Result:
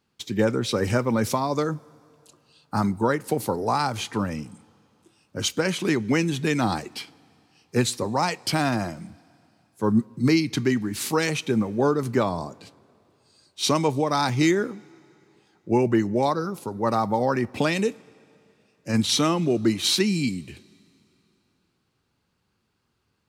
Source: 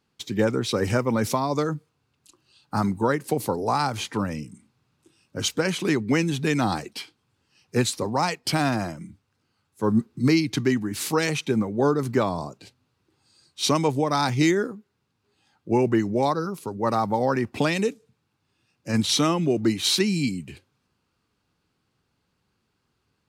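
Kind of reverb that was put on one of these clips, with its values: two-slope reverb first 0.21 s, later 2.9 s, from -18 dB, DRR 17.5 dB

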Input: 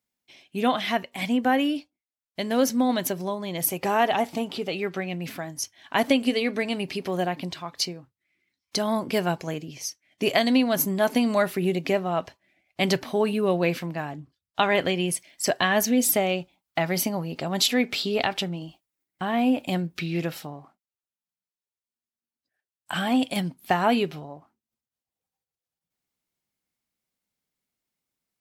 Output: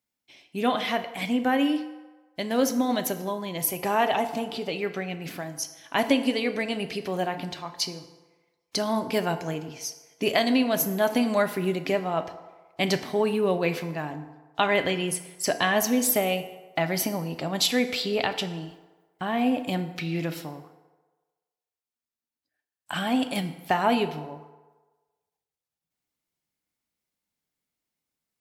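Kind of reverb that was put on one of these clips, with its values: FDN reverb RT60 1.3 s, low-frequency decay 0.7×, high-frequency decay 0.6×, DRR 8.5 dB; trim -1.5 dB

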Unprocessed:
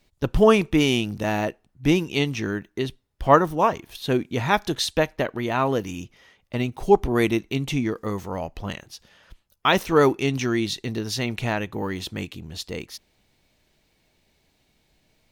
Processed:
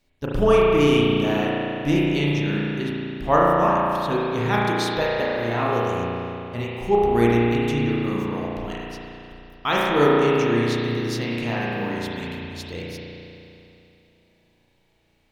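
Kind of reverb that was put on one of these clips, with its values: spring tank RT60 2.9 s, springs 34 ms, chirp 70 ms, DRR -6 dB; trim -5.5 dB

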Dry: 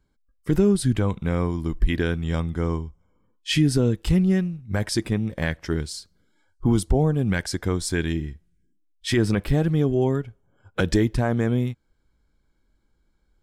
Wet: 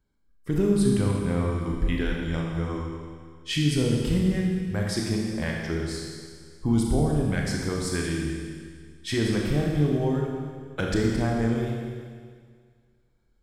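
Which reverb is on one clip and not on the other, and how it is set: Schroeder reverb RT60 1.9 s, combs from 27 ms, DRR -1.5 dB; trim -6 dB

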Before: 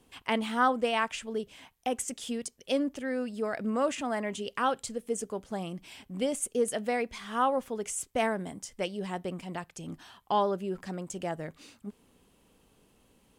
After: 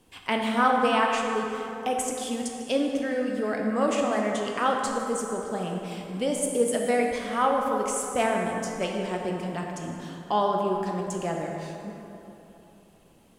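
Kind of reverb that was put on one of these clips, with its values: plate-style reverb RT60 3.1 s, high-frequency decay 0.5×, DRR 0 dB; trim +2 dB

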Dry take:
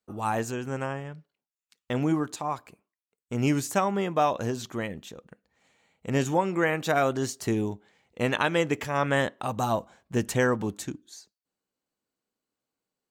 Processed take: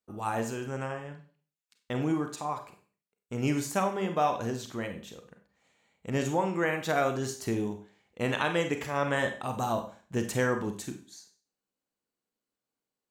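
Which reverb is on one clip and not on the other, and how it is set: Schroeder reverb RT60 0.41 s, combs from 31 ms, DRR 6 dB; trim -4 dB

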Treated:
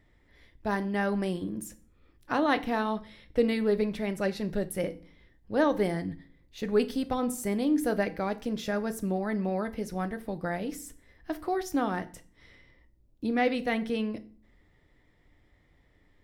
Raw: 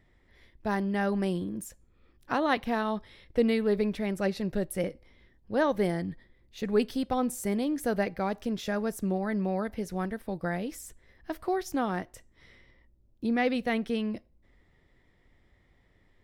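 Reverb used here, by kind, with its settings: FDN reverb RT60 0.42 s, low-frequency decay 1.5×, high-frequency decay 0.85×, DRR 10 dB

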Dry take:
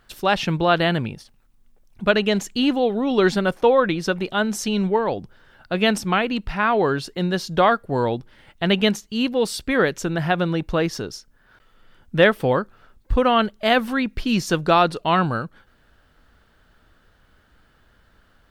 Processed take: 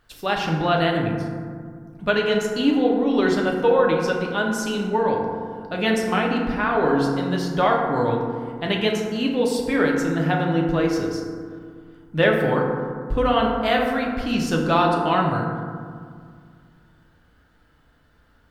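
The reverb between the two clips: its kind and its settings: FDN reverb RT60 2 s, low-frequency decay 1.4×, high-frequency decay 0.35×, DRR -1 dB; trim -5 dB

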